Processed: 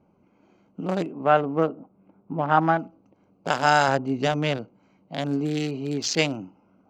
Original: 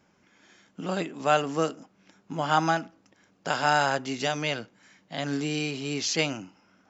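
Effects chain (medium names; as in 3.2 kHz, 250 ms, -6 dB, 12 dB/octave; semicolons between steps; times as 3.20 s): local Wiener filter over 25 samples; 1.13–2.79 s: low-pass 1.8 kHz 12 dB/octave; 3.88–4.58 s: tilt EQ -1.5 dB/octave; trim +4.5 dB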